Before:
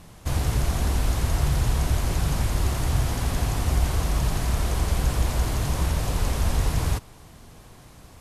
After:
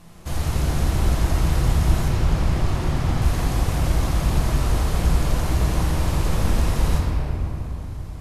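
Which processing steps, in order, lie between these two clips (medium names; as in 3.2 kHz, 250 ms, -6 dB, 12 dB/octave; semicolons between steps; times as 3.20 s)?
2.08–3.22 s: treble shelf 7.7 kHz -11.5 dB; reverberation RT60 3.4 s, pre-delay 6 ms, DRR -4 dB; trim -3 dB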